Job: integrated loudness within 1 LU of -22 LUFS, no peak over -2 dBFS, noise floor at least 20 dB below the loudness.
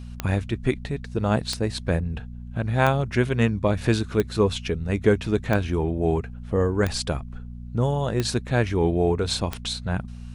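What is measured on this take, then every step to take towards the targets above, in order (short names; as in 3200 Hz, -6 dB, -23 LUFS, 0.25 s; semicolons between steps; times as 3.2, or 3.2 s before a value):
clicks 8; hum 60 Hz; harmonics up to 240 Hz; hum level -34 dBFS; loudness -24.5 LUFS; peak -5.5 dBFS; loudness target -22.0 LUFS
-> de-click; de-hum 60 Hz, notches 4; gain +2.5 dB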